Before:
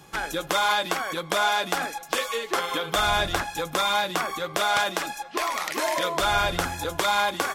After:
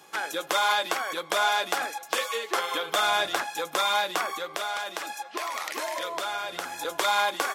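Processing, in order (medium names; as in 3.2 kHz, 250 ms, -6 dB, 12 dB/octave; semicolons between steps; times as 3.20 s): 4.31–6.85 s: compression, threshold -27 dBFS, peak gain reduction 9 dB; high-pass 370 Hz 12 dB/octave; trim -1 dB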